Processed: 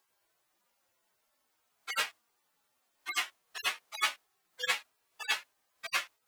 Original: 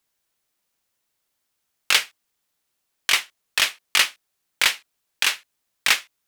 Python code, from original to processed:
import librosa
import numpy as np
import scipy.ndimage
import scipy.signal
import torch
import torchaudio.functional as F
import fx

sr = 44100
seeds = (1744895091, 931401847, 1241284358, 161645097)

y = fx.hpss_only(x, sr, part='harmonic')
y = fx.peak_eq(y, sr, hz=840.0, db=9.5, octaves=2.5)
y = F.gain(torch.from_numpy(y), 1.5).numpy()